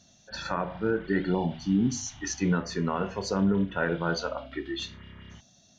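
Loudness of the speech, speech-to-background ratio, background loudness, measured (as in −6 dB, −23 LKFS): −29.0 LKFS, 19.5 dB, −48.5 LKFS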